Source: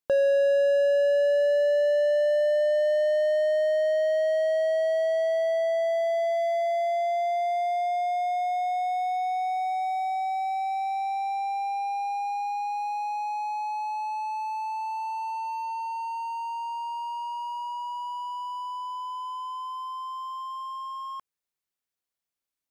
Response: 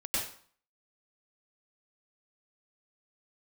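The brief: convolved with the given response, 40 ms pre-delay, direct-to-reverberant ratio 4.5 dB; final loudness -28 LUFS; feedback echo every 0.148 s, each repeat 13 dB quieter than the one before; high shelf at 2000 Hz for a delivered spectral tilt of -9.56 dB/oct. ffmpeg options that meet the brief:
-filter_complex "[0:a]highshelf=f=2k:g=9,aecho=1:1:148|296|444:0.224|0.0493|0.0108,asplit=2[a][b];[1:a]atrim=start_sample=2205,adelay=40[c];[b][c]afir=irnorm=-1:irlink=0,volume=-10.5dB[d];[a][d]amix=inputs=2:normalize=0,volume=-3.5dB"

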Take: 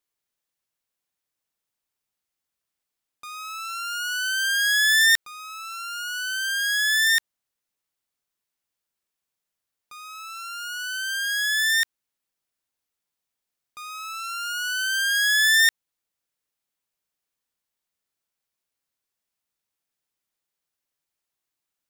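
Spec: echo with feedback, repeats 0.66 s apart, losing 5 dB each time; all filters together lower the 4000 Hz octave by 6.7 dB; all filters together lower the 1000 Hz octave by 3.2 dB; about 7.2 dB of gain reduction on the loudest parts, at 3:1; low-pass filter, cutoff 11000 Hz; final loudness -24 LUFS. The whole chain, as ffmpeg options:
-af "lowpass=11k,equalizer=f=1k:t=o:g=-4.5,equalizer=f=4k:t=o:g=-8.5,acompressor=threshold=-29dB:ratio=3,aecho=1:1:660|1320|1980|2640|3300|3960|4620:0.562|0.315|0.176|0.0988|0.0553|0.031|0.0173,volume=6.5dB"

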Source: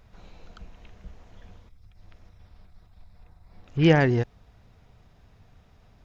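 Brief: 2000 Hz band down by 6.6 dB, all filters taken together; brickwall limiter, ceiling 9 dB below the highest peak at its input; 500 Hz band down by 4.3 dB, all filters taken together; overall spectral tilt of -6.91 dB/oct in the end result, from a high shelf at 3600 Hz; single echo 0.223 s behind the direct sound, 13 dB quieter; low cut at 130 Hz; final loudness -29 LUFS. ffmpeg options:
-af "highpass=130,equalizer=f=500:t=o:g=-5,equalizer=f=2k:t=o:g=-6,highshelf=f=3.6k:g=-7,alimiter=limit=-18.5dB:level=0:latency=1,aecho=1:1:223:0.224,volume=1.5dB"

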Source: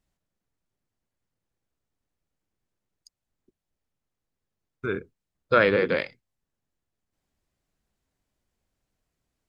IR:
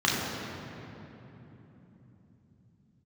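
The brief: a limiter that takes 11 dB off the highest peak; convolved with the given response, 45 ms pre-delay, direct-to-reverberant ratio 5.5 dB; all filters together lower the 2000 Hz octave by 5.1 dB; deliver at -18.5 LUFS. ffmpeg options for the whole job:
-filter_complex "[0:a]equalizer=f=2k:t=o:g=-7,alimiter=limit=-19dB:level=0:latency=1,asplit=2[a][b];[1:a]atrim=start_sample=2205,adelay=45[c];[b][c]afir=irnorm=-1:irlink=0,volume=-21dB[d];[a][d]amix=inputs=2:normalize=0,volume=14.5dB"

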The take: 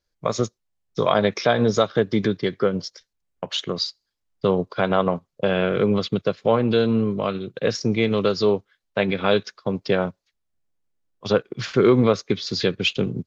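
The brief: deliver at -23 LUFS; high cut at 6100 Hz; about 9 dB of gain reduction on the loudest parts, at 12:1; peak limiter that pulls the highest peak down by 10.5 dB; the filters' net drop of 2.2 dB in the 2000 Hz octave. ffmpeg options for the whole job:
-af "lowpass=6.1k,equalizer=f=2k:t=o:g=-3,acompressor=threshold=-21dB:ratio=12,volume=9dB,alimiter=limit=-11.5dB:level=0:latency=1"

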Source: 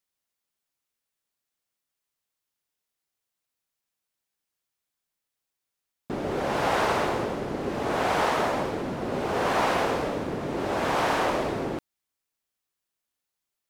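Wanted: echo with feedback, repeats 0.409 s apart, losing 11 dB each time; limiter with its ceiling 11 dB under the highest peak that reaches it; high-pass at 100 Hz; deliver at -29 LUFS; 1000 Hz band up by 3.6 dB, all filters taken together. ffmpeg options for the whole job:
-af "highpass=100,equalizer=f=1k:t=o:g=4.5,alimiter=limit=-20dB:level=0:latency=1,aecho=1:1:409|818|1227:0.282|0.0789|0.0221"

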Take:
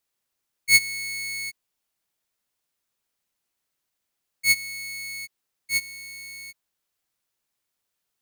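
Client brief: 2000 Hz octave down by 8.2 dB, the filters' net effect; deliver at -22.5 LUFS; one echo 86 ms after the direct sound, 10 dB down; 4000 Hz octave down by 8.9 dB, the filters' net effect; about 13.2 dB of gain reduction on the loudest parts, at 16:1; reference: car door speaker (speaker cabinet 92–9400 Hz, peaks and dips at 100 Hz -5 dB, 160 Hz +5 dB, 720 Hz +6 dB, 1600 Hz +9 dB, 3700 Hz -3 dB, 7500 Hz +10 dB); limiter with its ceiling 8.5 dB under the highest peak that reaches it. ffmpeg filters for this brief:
-af "equalizer=f=2k:t=o:g=-8,equalizer=f=4k:t=o:g=-8,acompressor=threshold=-29dB:ratio=16,alimiter=level_in=3.5dB:limit=-24dB:level=0:latency=1,volume=-3.5dB,highpass=92,equalizer=f=100:t=q:w=4:g=-5,equalizer=f=160:t=q:w=4:g=5,equalizer=f=720:t=q:w=4:g=6,equalizer=f=1.6k:t=q:w=4:g=9,equalizer=f=3.7k:t=q:w=4:g=-3,equalizer=f=7.5k:t=q:w=4:g=10,lowpass=f=9.4k:w=0.5412,lowpass=f=9.4k:w=1.3066,aecho=1:1:86:0.316,volume=17.5dB"

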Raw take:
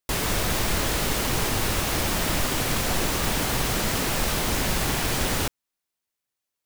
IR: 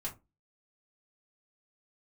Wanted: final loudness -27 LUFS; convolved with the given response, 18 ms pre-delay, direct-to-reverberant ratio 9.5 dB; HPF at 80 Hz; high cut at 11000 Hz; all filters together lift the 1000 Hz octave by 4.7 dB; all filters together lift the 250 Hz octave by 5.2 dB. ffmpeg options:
-filter_complex "[0:a]highpass=80,lowpass=11k,equalizer=f=250:t=o:g=6.5,equalizer=f=1k:t=o:g=5.5,asplit=2[a][b];[1:a]atrim=start_sample=2205,adelay=18[c];[b][c]afir=irnorm=-1:irlink=0,volume=-9.5dB[d];[a][d]amix=inputs=2:normalize=0,volume=-4dB"

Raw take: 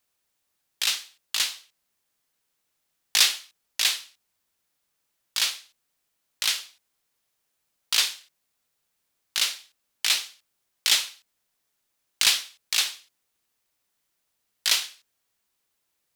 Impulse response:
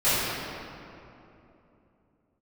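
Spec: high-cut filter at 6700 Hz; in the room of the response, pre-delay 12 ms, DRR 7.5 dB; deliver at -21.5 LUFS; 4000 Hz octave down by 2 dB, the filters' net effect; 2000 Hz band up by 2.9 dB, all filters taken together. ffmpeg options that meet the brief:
-filter_complex "[0:a]lowpass=6.7k,equalizer=f=2k:t=o:g=5,equalizer=f=4k:t=o:g=-3.5,asplit=2[a][b];[1:a]atrim=start_sample=2205,adelay=12[c];[b][c]afir=irnorm=-1:irlink=0,volume=-25dB[d];[a][d]amix=inputs=2:normalize=0,volume=4.5dB"

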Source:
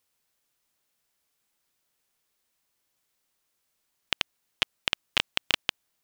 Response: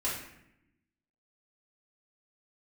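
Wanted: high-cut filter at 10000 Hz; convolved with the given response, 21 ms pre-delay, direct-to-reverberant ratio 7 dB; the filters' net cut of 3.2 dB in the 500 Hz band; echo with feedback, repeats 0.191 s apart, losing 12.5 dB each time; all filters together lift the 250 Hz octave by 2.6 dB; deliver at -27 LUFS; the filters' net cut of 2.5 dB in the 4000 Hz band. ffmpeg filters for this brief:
-filter_complex "[0:a]lowpass=10k,equalizer=f=250:t=o:g=5,equalizer=f=500:t=o:g=-5.5,equalizer=f=4k:t=o:g=-3.5,aecho=1:1:191|382|573:0.237|0.0569|0.0137,asplit=2[a][b];[1:a]atrim=start_sample=2205,adelay=21[c];[b][c]afir=irnorm=-1:irlink=0,volume=-13dB[d];[a][d]amix=inputs=2:normalize=0,volume=3.5dB"

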